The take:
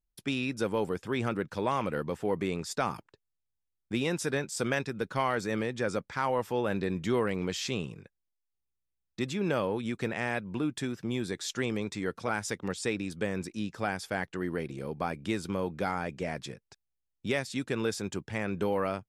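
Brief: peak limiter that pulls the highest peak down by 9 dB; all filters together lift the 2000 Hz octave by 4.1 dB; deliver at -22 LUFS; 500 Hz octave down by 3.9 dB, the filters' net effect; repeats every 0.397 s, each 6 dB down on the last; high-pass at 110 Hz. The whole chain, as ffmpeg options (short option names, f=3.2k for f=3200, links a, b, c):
-af "highpass=110,equalizer=f=500:t=o:g=-5,equalizer=f=2k:t=o:g=5.5,alimiter=limit=-23dB:level=0:latency=1,aecho=1:1:397|794|1191|1588|1985|2382:0.501|0.251|0.125|0.0626|0.0313|0.0157,volume=12.5dB"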